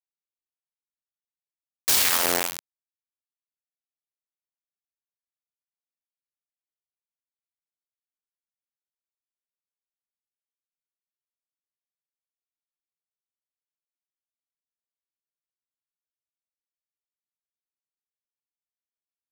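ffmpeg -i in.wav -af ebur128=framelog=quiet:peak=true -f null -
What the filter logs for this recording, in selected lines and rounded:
Integrated loudness:
  I:         -21.0 LUFS
  Threshold: -31.4 LUFS
Loudness range:
  LRA:         5.8 LU
  Threshold: -46.6 LUFS
  LRA low:   -31.6 LUFS
  LRA high:  -25.8 LUFS
True peak:
  Peak:       -3.5 dBFS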